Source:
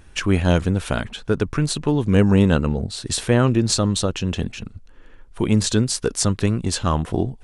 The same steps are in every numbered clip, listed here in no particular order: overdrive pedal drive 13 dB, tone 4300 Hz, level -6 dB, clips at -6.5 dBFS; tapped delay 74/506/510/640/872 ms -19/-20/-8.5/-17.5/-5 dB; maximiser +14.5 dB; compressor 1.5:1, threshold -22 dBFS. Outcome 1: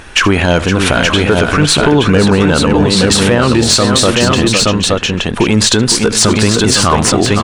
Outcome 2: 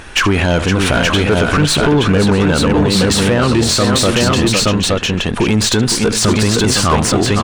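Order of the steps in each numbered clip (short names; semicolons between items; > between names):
compressor > overdrive pedal > tapped delay > maximiser; compressor > tapped delay > maximiser > overdrive pedal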